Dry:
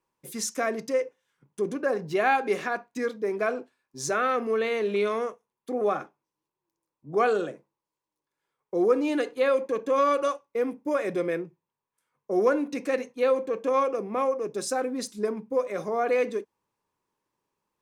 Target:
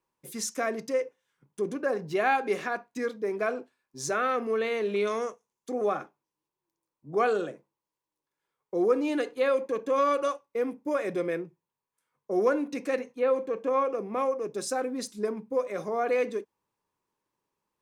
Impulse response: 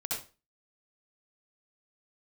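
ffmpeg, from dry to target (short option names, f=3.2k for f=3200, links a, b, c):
-filter_complex "[0:a]asettb=1/sr,asplit=3[a][b][c];[a]atrim=end=5.074[d];[b]atrim=start=5.07:end=5.86,asetpts=PTS-STARTPTS,afade=t=in:d=0.004:c=qsin,afade=t=out:st=0.786:d=0.004:c=qsin,equalizer=f=6.5k:w=1.5:g=10.5[e];[c]atrim=start=5.856[f];[d][e]acrossfade=d=0.004:c1=hsin:c2=qsin[g];[g][f]acrossfade=d=0.004:c1=qsin:c2=hsin,asettb=1/sr,asplit=3[h][i][j];[h]atrim=end=12.994[k];[i]atrim=start=12.99:end=14.12,asetpts=PTS-STARTPTS,afade=t=in:d=0.004:c=qsin,afade=t=out:st=1.126:d=0.004:c=qsin,acrossover=split=2600[l][m];[m]acompressor=threshold=-55dB:ratio=4:attack=1:release=60[n];[l][n]amix=inputs=2:normalize=0[o];[j]atrim=start=14.116[p];[k][o]acrossfade=d=0.004:c1=hsin:c2=qsin[q];[q][p]acrossfade=d=0.004:c1=qsin:c2=hsin,volume=-2dB"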